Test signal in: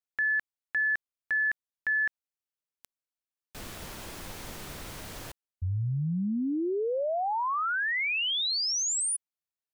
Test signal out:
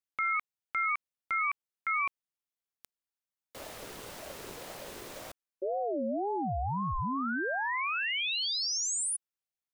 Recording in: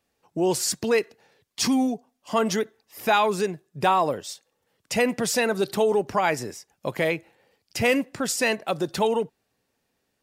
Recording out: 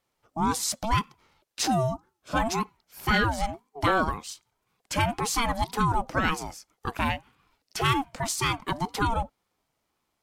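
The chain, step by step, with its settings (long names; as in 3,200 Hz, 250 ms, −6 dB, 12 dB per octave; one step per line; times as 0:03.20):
ring modulator whose carrier an LFO sweeps 510 Hz, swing 25%, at 1.9 Hz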